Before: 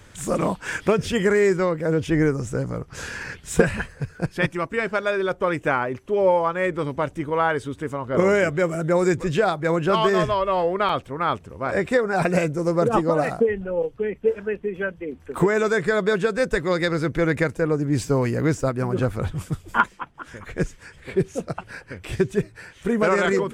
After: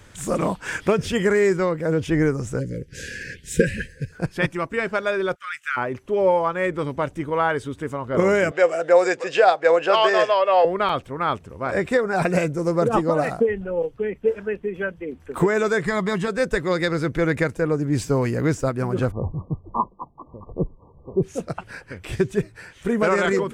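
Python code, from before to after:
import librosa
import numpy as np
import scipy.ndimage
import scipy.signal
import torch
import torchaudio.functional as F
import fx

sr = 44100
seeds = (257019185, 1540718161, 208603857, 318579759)

y = fx.cheby1_bandstop(x, sr, low_hz=540.0, high_hz=1600.0, order=4, at=(2.59, 4.11), fade=0.02)
y = fx.ellip_highpass(y, sr, hz=1300.0, order=4, stop_db=40, at=(5.34, 5.76), fade=0.02)
y = fx.cabinet(y, sr, low_hz=490.0, low_slope=12, high_hz=8200.0, hz=(500.0, 730.0, 1700.0, 2700.0, 4800.0), db=(10, 9, 5, 8, 6), at=(8.51, 10.65))
y = fx.comb(y, sr, ms=1.0, depth=0.64, at=(15.85, 16.28))
y = fx.brickwall_lowpass(y, sr, high_hz=1200.0, at=(19.1, 21.22), fade=0.02)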